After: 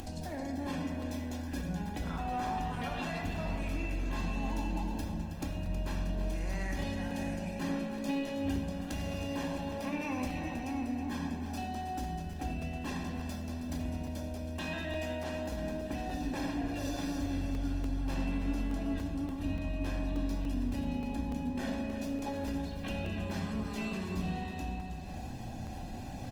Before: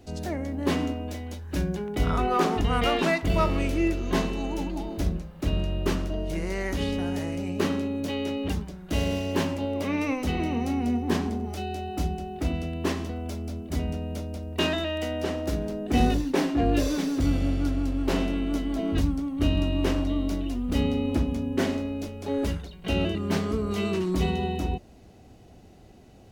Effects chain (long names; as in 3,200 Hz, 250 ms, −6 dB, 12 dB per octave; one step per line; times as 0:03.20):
low-shelf EQ 330 Hz −2.5 dB
mains-hum notches 50/100/150/200 Hz
comb filter 1.2 ms, depth 63%
upward compression, threshold −35 dBFS
brickwall limiter −22.5 dBFS, peak gain reduction 12 dB
downward compressor 2.5 to 1, threshold −40 dBFS, peak gain reduction 9.5 dB
feedback echo with a high-pass in the loop 320 ms, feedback 57%, high-pass 200 Hz, level −10 dB
on a send at −1.5 dB: convolution reverb RT60 1.5 s, pre-delay 4 ms
on the sum: regular buffer underruns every 0.29 s, samples 128, zero, from 0:00.73
Opus 24 kbit/s 48,000 Hz